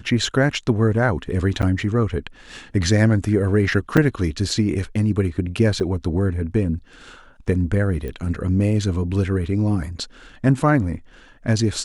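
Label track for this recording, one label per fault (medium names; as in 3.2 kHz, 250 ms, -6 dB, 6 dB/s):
1.620000	1.630000	dropout 8.4 ms
3.970000	3.980000	dropout 5.5 ms
5.800000	5.810000	dropout 6.4 ms
8.080000	8.080000	pop -19 dBFS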